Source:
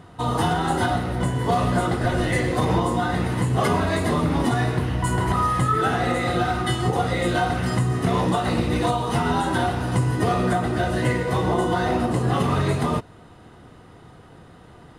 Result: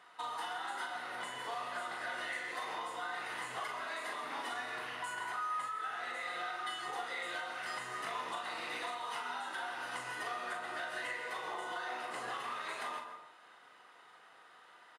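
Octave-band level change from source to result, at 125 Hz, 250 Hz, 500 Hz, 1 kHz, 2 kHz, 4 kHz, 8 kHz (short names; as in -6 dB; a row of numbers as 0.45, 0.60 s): under -40 dB, -32.5 dB, -22.0 dB, -15.0 dB, -10.0 dB, -11.5 dB, -15.0 dB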